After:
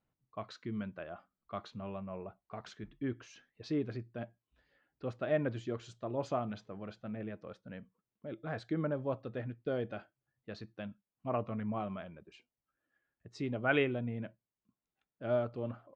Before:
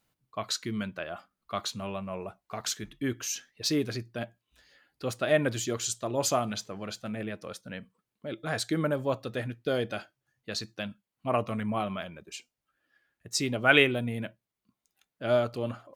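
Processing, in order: tape spacing loss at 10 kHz 37 dB; trim -4.5 dB

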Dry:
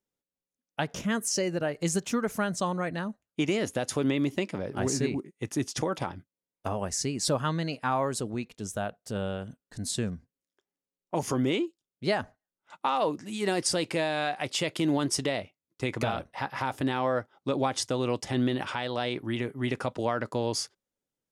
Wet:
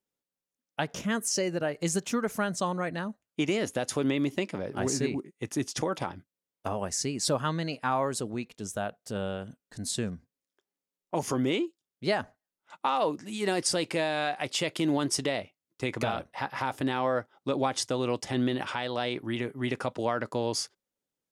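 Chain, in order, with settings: bass shelf 99 Hz -6.5 dB

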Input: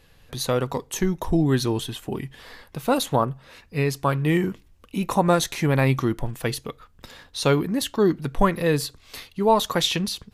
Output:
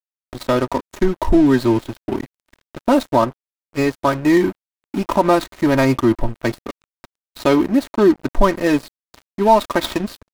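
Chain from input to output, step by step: median filter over 15 samples; comb 3.2 ms, depth 78%; in parallel at +3 dB: peak limiter -14 dBFS, peak gain reduction 9.5 dB; on the sum: crossover distortion -29 dBFS

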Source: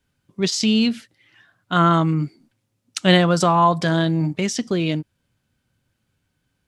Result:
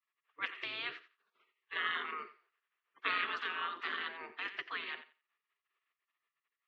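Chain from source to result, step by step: spectral gate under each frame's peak -25 dB weak; cabinet simulation 360–2900 Hz, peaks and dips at 380 Hz +6 dB, 570 Hz -10 dB, 800 Hz -9 dB, 1.2 kHz +8 dB, 1.8 kHz +7 dB, 2.7 kHz +3 dB; thinning echo 88 ms, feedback 18%, high-pass 560 Hz, level -13 dB; trim -2 dB

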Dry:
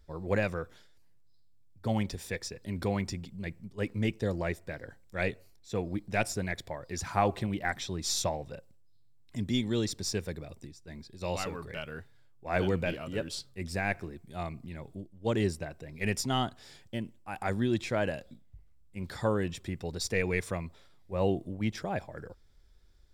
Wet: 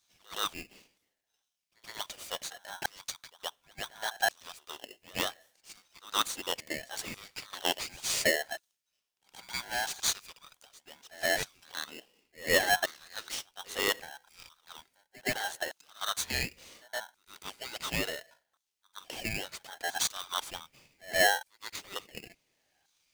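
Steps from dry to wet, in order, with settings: LFO high-pass saw down 0.7 Hz 390–5400 Hz; pre-echo 120 ms -22 dB; polarity switched at an audio rate 1.2 kHz

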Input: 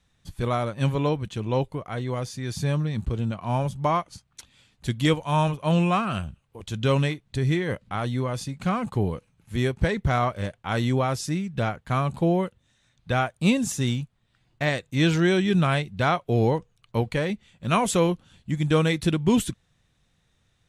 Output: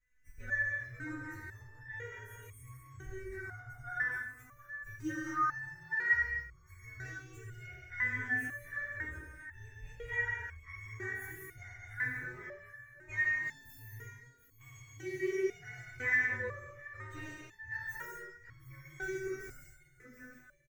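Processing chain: frequency axis rescaled in octaves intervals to 122%; in parallel at -1.5 dB: compressor with a negative ratio -32 dBFS, ratio -1; on the sum: FFT filter 130 Hz 0 dB, 180 Hz -23 dB, 410 Hz -2 dB, 630 Hz -18 dB, 930 Hz -14 dB, 1.9 kHz +13 dB, 3 kHz -14 dB, 4.4 kHz -19 dB, 6.6 kHz -7 dB, 11 kHz -9 dB; on a send: feedback delay 731 ms, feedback 36%, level -13.5 dB; on the sum: gated-style reverb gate 280 ms flat, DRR -2.5 dB; resonator arpeggio 2 Hz 250–1100 Hz

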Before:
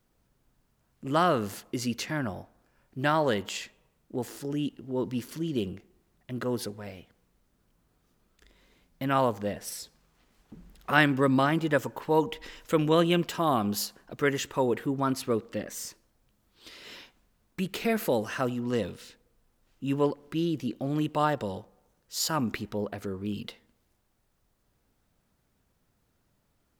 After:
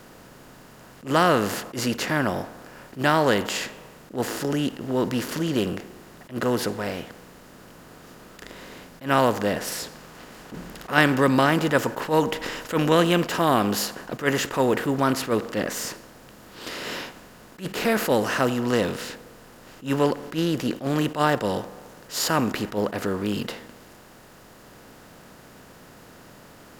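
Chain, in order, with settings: spectral levelling over time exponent 0.6; attacks held to a fixed rise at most 240 dB/s; trim +2 dB

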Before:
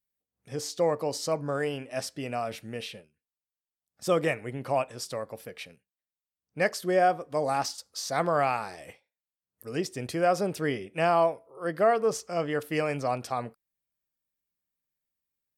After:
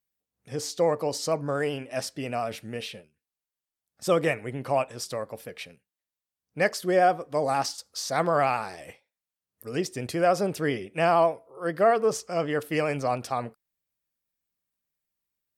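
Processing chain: vibrato 13 Hz 39 cents; trim +2 dB

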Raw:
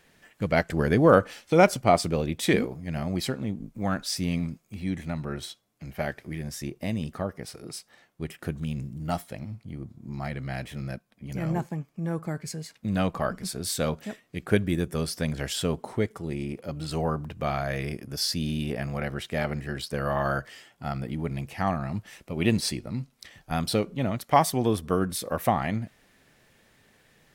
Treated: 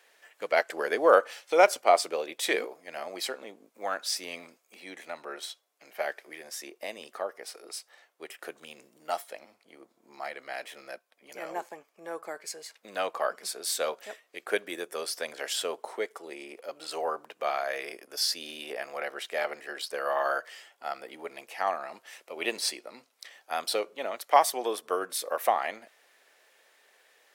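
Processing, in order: high-pass 450 Hz 24 dB/octave

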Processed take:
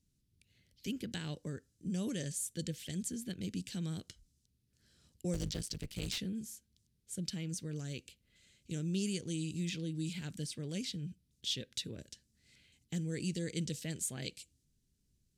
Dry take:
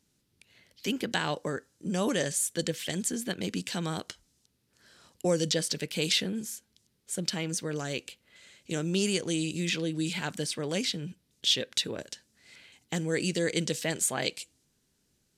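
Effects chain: 5.33–6.18 s: cycle switcher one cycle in 3, muted; amplifier tone stack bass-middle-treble 10-0-1; trim +11 dB

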